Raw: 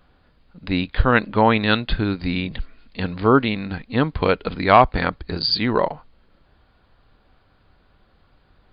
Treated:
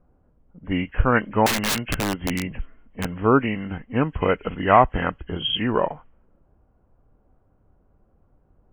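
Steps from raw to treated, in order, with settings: nonlinear frequency compression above 1500 Hz 1.5:1; low-pass opened by the level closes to 660 Hz, open at -16.5 dBFS; 1.46–3.05 wrapped overs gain 15 dB; gain -2 dB

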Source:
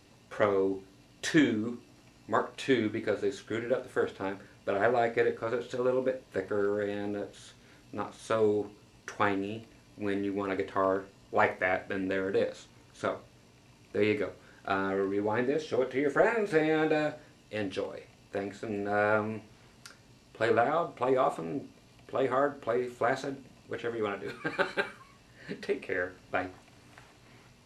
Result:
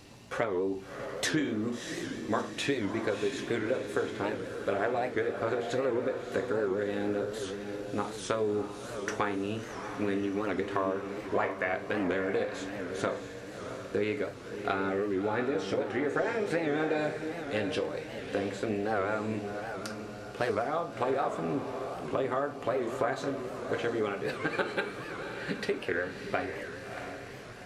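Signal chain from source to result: compressor, threshold -34 dBFS, peak gain reduction 14.5 dB; diffused feedback echo 0.661 s, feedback 44%, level -7 dB; record warp 78 rpm, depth 160 cents; gain +6.5 dB

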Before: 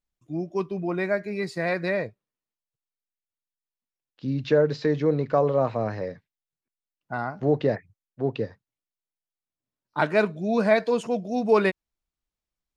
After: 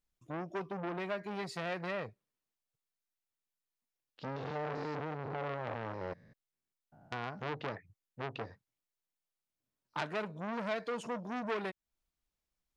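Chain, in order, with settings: 4.36–7.24 stepped spectrum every 0.2 s; compressor 3:1, threshold -33 dBFS, peak gain reduction 14 dB; core saturation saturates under 2500 Hz

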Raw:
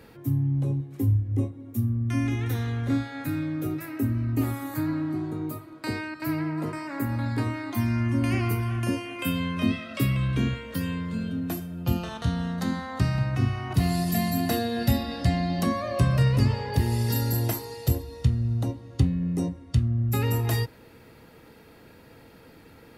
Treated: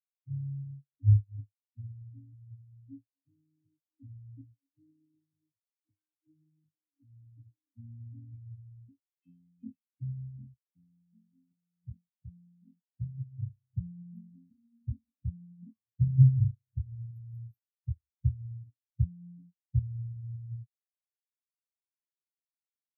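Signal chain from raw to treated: Butterworth band-stop 670 Hz, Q 0.52; spectral expander 4:1

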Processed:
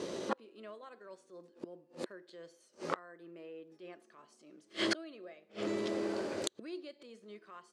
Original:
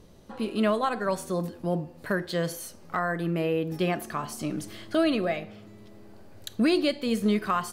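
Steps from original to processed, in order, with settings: flipped gate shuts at -31 dBFS, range -40 dB; transient shaper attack -8 dB, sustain -2 dB; speaker cabinet 320–8300 Hz, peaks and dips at 360 Hz +7 dB, 530 Hz +4 dB, 770 Hz -5 dB; gain +17 dB

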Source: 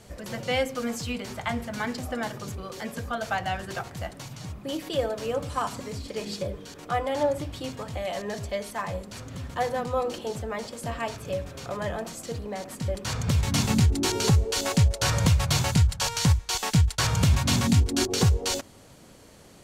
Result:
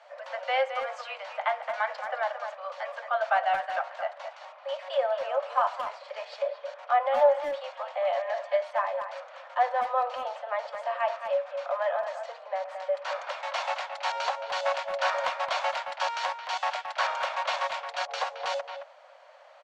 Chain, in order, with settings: steep high-pass 550 Hz 96 dB/oct; tape spacing loss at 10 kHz 40 dB; speakerphone echo 0.22 s, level -8 dB; gain +8 dB

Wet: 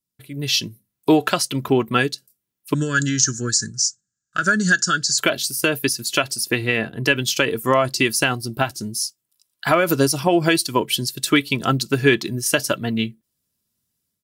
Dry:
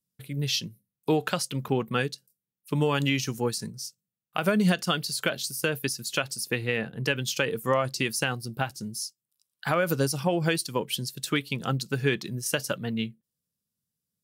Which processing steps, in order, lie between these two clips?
comb 3 ms, depth 47%; AGC gain up to 10 dB; 2.74–5.18 EQ curve 140 Hz 0 dB, 580 Hz -12 dB, 860 Hz -28 dB, 1600 Hz +12 dB, 2200 Hz -20 dB, 7100 Hz +14 dB, 12000 Hz -28 dB

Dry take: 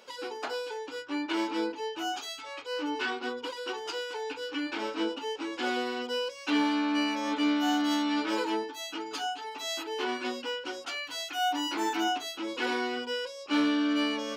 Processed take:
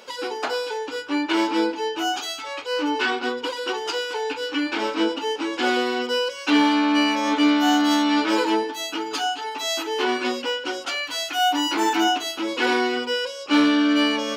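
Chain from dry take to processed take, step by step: Schroeder reverb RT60 0.94 s, combs from 31 ms, DRR 15 dB; gain +9 dB

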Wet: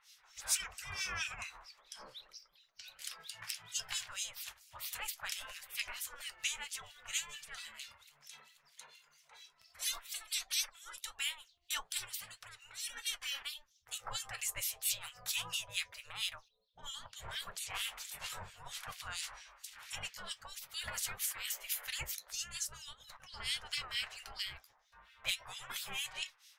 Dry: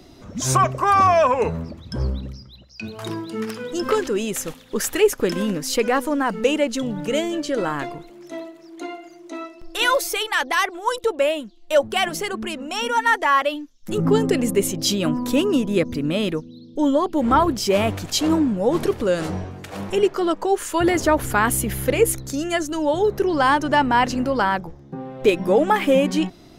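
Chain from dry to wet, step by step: 16.48–17.84 low-pass opened by the level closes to 1300 Hz, open at -15.5 dBFS; spectral gate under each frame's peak -20 dB weak; passive tone stack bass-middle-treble 10-0-10; 22.93–23.34 negative-ratio compressor -50 dBFS, ratio -0.5; harmonic tremolo 4.4 Hz, depth 100%, crossover 1900 Hz; flange 1.6 Hz, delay 6.5 ms, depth 3.5 ms, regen -58%; gain +6 dB

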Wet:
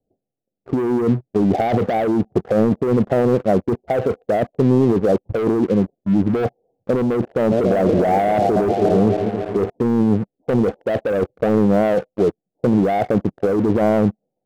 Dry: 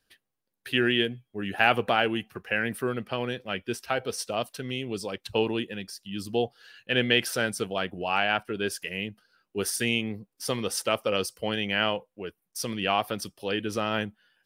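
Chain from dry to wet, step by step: 7.21–9.7 regenerating reverse delay 0.14 s, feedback 76%, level -10.5 dB; steep low-pass 760 Hz 72 dB/oct; low shelf 67 Hz -8.5 dB; sample leveller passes 3; negative-ratio compressor -25 dBFS, ratio -1; gain +9 dB

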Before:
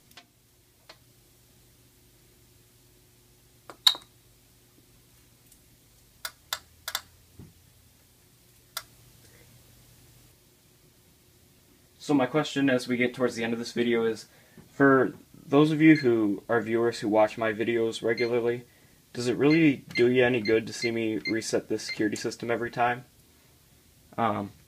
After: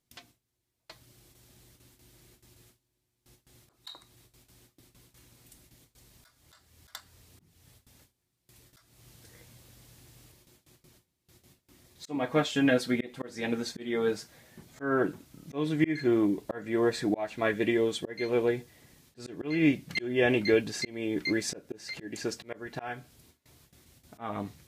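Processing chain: gate with hold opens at -48 dBFS; auto swell 0.32 s

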